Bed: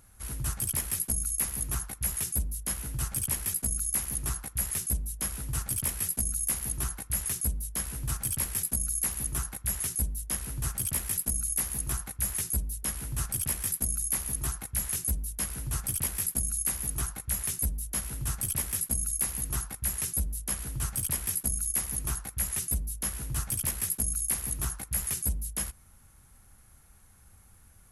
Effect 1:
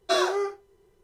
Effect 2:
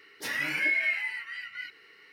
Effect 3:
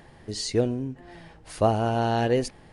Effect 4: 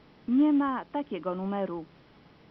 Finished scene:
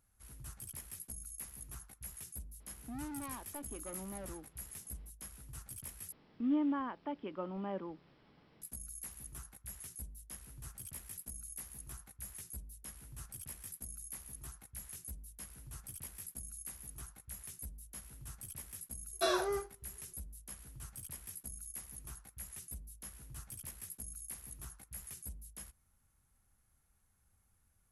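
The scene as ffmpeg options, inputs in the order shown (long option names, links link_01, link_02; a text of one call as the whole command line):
ffmpeg -i bed.wav -i cue0.wav -i cue1.wav -i cue2.wav -i cue3.wav -filter_complex "[4:a]asplit=2[link_01][link_02];[0:a]volume=-17dB[link_03];[link_01]asoftclip=type=hard:threshold=-30dB[link_04];[link_03]asplit=2[link_05][link_06];[link_05]atrim=end=6.124[link_07];[link_02]atrim=end=2.5,asetpts=PTS-STARTPTS,volume=-9dB[link_08];[link_06]atrim=start=8.616[link_09];[link_04]atrim=end=2.5,asetpts=PTS-STARTPTS,volume=-12.5dB,afade=type=in:duration=0.004:curve=hsin,afade=type=out:start_time=2.496:duration=0.004:curve=hsin,adelay=2600[link_10];[1:a]atrim=end=1.03,asetpts=PTS-STARTPTS,volume=-8.5dB,afade=type=in:duration=0.004:curve=hsin,afade=type=out:start_time=1.026:duration=0.004:curve=hsin,adelay=19120[link_11];[link_07][link_08]acrossfade=duration=0.004:curve1=hsin:curve2=hsin[link_12];[link_12][link_09]acrossfade=duration=0.004:curve1=hsin:curve2=hsin[link_13];[link_13][link_10][link_11]amix=inputs=3:normalize=0" out.wav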